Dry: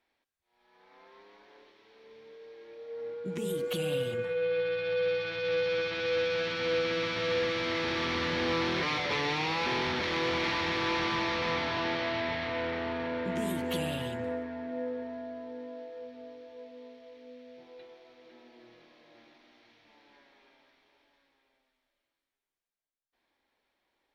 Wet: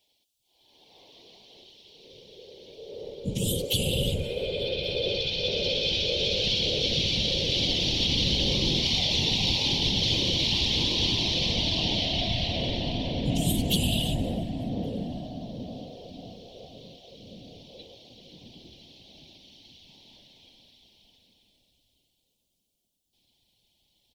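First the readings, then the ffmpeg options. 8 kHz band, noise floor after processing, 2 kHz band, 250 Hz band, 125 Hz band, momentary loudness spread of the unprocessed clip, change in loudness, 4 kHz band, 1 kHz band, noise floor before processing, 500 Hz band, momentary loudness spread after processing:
+13.5 dB, -75 dBFS, -3.5 dB, +4.5 dB, +11.5 dB, 18 LU, +6.0 dB, +12.5 dB, -6.5 dB, under -85 dBFS, -2.5 dB, 15 LU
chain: -filter_complex "[0:a]alimiter=level_in=1.06:limit=0.0631:level=0:latency=1,volume=0.944,firequalizer=gain_entry='entry(750,0);entry(1300,-28);entry(3000,13)':delay=0.05:min_phase=1,asplit=2[s0][s1];[s1]adelay=1123,lowpass=f=2000:p=1,volume=0.0794,asplit=2[s2][s3];[s3]adelay=1123,lowpass=f=2000:p=1,volume=0.51,asplit=2[s4][s5];[s5]adelay=1123,lowpass=f=2000:p=1,volume=0.51,asplit=2[s6][s7];[s7]adelay=1123,lowpass=f=2000:p=1,volume=0.51[s8];[s2][s4][s6][s8]amix=inputs=4:normalize=0[s9];[s0][s9]amix=inputs=2:normalize=0,afftfilt=real='hypot(re,im)*cos(2*PI*random(0))':imag='hypot(re,im)*sin(2*PI*random(1))':win_size=512:overlap=0.75,asubboost=boost=5.5:cutoff=180,asplit=2[s10][s11];[s11]aecho=0:1:354:0.0891[s12];[s10][s12]amix=inputs=2:normalize=0,volume=2.51"

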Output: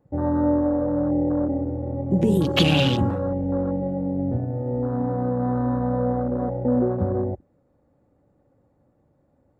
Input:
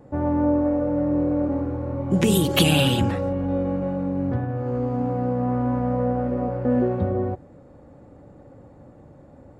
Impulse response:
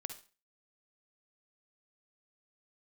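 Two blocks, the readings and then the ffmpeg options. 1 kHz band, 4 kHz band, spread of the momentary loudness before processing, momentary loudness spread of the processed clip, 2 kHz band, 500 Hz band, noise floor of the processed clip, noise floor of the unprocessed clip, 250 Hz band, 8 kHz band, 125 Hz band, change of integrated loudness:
-1.0 dB, -1.0 dB, 8 LU, 7 LU, -1.5 dB, 0.0 dB, -65 dBFS, -49 dBFS, 0.0 dB, under -10 dB, 0.0 dB, 0.0 dB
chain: -af "afwtdn=0.0447"

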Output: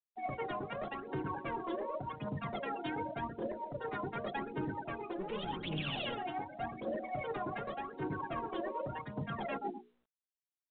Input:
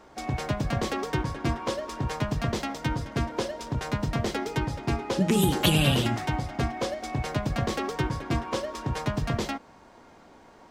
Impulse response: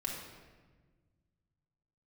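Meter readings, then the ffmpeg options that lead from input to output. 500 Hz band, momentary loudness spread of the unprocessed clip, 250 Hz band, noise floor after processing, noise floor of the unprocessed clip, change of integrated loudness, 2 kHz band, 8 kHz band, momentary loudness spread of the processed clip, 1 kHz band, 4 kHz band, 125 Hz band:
-8.0 dB, 9 LU, -12.5 dB, under -85 dBFS, -53 dBFS, -11.0 dB, -9.5 dB, under -40 dB, 3 LU, -6.0 dB, -14.0 dB, -17.0 dB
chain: -af "highpass=210,aecho=1:1:126|252|378|504|630|756:0.398|0.195|0.0956|0.0468|0.023|0.0112,afftfilt=real='re*gte(hypot(re,im),0.0398)':imag='im*gte(hypot(re,im),0.0398)':win_size=1024:overlap=0.75,asoftclip=type=tanh:threshold=0.0562,tremolo=f=0.72:d=0.76,bandreject=f=60:t=h:w=6,bandreject=f=120:t=h:w=6,bandreject=f=180:t=h:w=6,bandreject=f=240:t=h:w=6,bandreject=f=300:t=h:w=6,bandreject=f=360:t=h:w=6,bandreject=f=420:t=h:w=6,bandreject=f=480:t=h:w=6,bandreject=f=540:t=h:w=6,aphaser=in_gain=1:out_gain=1:delay=3:decay=0.74:speed=0.87:type=triangular,areverse,acompressor=threshold=0.00708:ratio=20,areverse,volume=2.51" -ar 8000 -c:a pcm_mulaw

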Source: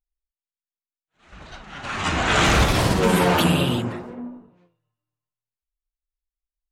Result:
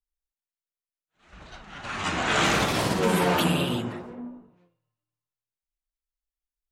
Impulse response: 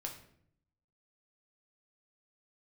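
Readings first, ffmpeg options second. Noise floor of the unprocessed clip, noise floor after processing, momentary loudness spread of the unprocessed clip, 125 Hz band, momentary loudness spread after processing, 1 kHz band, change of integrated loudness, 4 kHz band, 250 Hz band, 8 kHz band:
under -85 dBFS, under -85 dBFS, 19 LU, -7.5 dB, 18 LU, -4.0 dB, -4.5 dB, -4.0 dB, -5.0 dB, -4.0 dB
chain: -filter_complex "[0:a]bandreject=f=134:t=h:w=4,bandreject=f=268:t=h:w=4,bandreject=f=402:t=h:w=4,bandreject=f=536:t=h:w=4,bandreject=f=670:t=h:w=4,bandreject=f=804:t=h:w=4,bandreject=f=938:t=h:w=4,bandreject=f=1072:t=h:w=4,bandreject=f=1206:t=h:w=4,bandreject=f=1340:t=h:w=4,bandreject=f=1474:t=h:w=4,bandreject=f=1608:t=h:w=4,bandreject=f=1742:t=h:w=4,bandreject=f=1876:t=h:w=4,bandreject=f=2010:t=h:w=4,bandreject=f=2144:t=h:w=4,bandreject=f=2278:t=h:w=4,bandreject=f=2412:t=h:w=4,bandreject=f=2546:t=h:w=4,bandreject=f=2680:t=h:w=4,bandreject=f=2814:t=h:w=4,bandreject=f=2948:t=h:w=4,bandreject=f=3082:t=h:w=4,bandreject=f=3216:t=h:w=4,bandreject=f=3350:t=h:w=4,bandreject=f=3484:t=h:w=4,bandreject=f=3618:t=h:w=4,bandreject=f=3752:t=h:w=4,acrossover=split=120|530|6100[s0][s1][s2][s3];[s0]acompressor=threshold=0.01:ratio=6[s4];[s4][s1][s2][s3]amix=inputs=4:normalize=0,volume=0.631"

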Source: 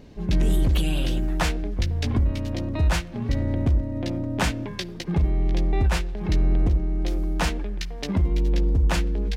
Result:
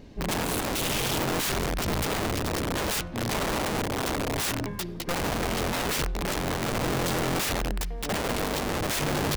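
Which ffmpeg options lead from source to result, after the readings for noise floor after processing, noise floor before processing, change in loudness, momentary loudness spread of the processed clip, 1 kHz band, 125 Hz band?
-36 dBFS, -36 dBFS, -3.0 dB, 4 LU, +5.0 dB, -8.5 dB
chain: -af "bandreject=f=74.09:t=h:w=4,bandreject=f=148.18:t=h:w=4,bandreject=f=222.27:t=h:w=4,bandreject=f=296.36:t=h:w=4,bandreject=f=370.45:t=h:w=4,bandreject=f=444.54:t=h:w=4,bandreject=f=518.63:t=h:w=4,bandreject=f=592.72:t=h:w=4,bandreject=f=666.81:t=h:w=4,bandreject=f=740.9:t=h:w=4,bandreject=f=814.99:t=h:w=4,bandreject=f=889.08:t=h:w=4,bandreject=f=963.17:t=h:w=4,bandreject=f=1037.26:t=h:w=4,bandreject=f=1111.35:t=h:w=4,bandreject=f=1185.44:t=h:w=4,bandreject=f=1259.53:t=h:w=4,bandreject=f=1333.62:t=h:w=4,bandreject=f=1407.71:t=h:w=4,bandreject=f=1481.8:t=h:w=4,aeval=exprs='(mod(14.1*val(0)+1,2)-1)/14.1':c=same"

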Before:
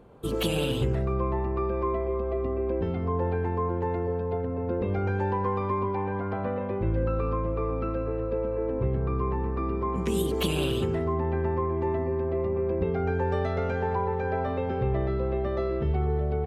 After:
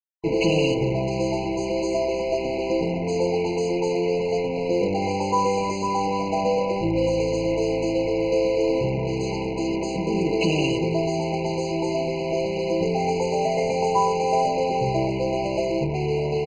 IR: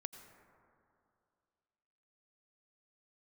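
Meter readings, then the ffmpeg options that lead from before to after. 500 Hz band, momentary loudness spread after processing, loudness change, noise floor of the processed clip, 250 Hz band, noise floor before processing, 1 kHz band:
+6.0 dB, 4 LU, +5.0 dB, -27 dBFS, +6.0 dB, -30 dBFS, +6.5 dB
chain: -af "lowpass=f=2200:p=1,aemphasis=mode=production:type=bsi,bandreject=f=60:t=h:w=6,bandreject=f=120:t=h:w=6,bandreject=f=180:t=h:w=6,bandreject=f=240:t=h:w=6,bandreject=f=300:t=h:w=6,bandreject=f=360:t=h:w=6,bandreject=f=420:t=h:w=6,bandreject=f=480:t=h:w=6,bandreject=f=540:t=h:w=6,acontrast=67,afwtdn=0.0251,aresample=16000,acrusher=bits=4:mix=0:aa=0.5,aresample=44100,aecho=1:1:6.2:0.78,afftfilt=real='re*eq(mod(floor(b*sr/1024/1000),2),0)':imag='im*eq(mod(floor(b*sr/1024/1000),2),0)':win_size=1024:overlap=0.75,volume=1.19"

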